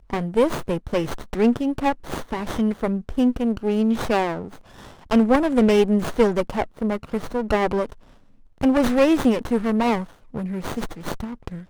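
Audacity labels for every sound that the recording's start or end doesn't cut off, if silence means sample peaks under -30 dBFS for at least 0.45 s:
5.110000	7.920000	sound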